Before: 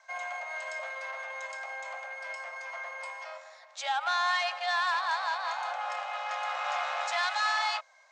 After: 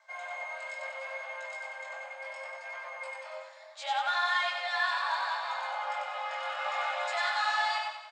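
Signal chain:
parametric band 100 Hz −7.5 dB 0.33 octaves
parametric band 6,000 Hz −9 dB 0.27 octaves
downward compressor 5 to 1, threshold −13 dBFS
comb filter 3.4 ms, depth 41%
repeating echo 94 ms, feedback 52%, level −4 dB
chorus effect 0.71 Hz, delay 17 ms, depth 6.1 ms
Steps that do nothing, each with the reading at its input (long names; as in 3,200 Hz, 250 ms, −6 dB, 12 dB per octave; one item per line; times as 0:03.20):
parametric band 100 Hz: nothing at its input below 510 Hz
downward compressor, threshold −13 dBFS: peak of its input −16.5 dBFS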